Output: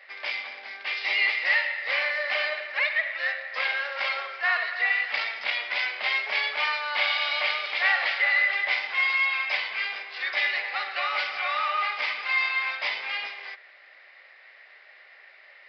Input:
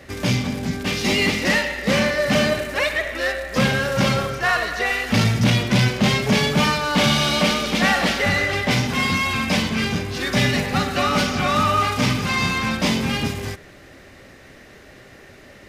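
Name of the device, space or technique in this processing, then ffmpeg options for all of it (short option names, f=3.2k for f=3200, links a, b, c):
musical greeting card: -af "aresample=11025,aresample=44100,highpass=f=660:w=0.5412,highpass=f=660:w=1.3066,equalizer=f=2.1k:t=o:w=0.52:g=10,volume=-8.5dB"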